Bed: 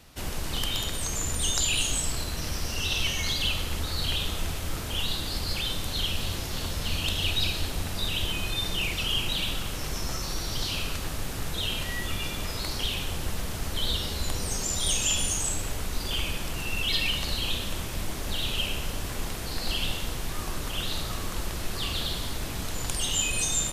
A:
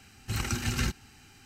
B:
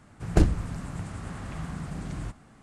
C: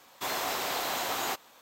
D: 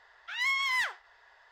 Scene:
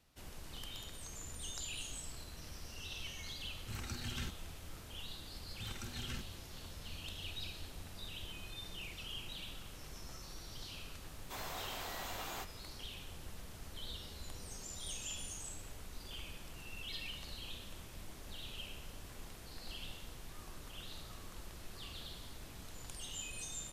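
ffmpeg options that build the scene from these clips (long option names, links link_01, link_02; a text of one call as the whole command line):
ffmpeg -i bed.wav -i cue0.wav -i cue1.wav -i cue2.wav -filter_complex "[1:a]asplit=2[link_01][link_02];[0:a]volume=-18dB[link_03];[link_01]atrim=end=1.45,asetpts=PTS-STARTPTS,volume=-14dB,afade=type=in:duration=0.004:curve=hsin,afade=type=out:start_time=1.446:duration=0.004:curve=hsin,adelay=3390[link_04];[link_02]atrim=end=1.45,asetpts=PTS-STARTPTS,volume=-16dB,afade=type=in:duration=0.004:curve=hsin,afade=type=out:start_time=1.446:duration=0.004:curve=hsin,adelay=5310[link_05];[3:a]atrim=end=1.61,asetpts=PTS-STARTPTS,volume=-13dB,afade=type=in:duration=0.004:curve=hsin,afade=type=out:start_time=1.606:duration=0.004:curve=hsin,adelay=11090[link_06];[link_03][link_04][link_05][link_06]amix=inputs=4:normalize=0" out.wav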